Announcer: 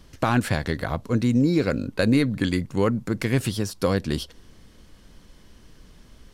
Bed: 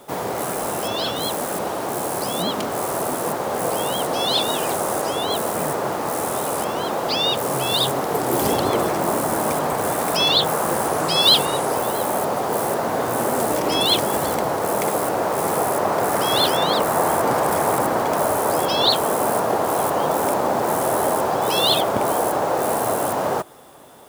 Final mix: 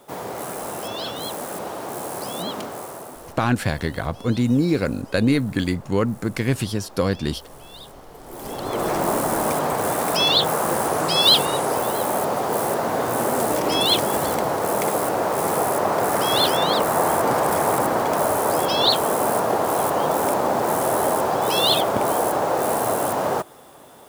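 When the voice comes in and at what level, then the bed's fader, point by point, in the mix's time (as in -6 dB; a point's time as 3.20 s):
3.15 s, +1.0 dB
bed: 2.59 s -5.5 dB
3.53 s -22 dB
8.17 s -22 dB
8.92 s -0.5 dB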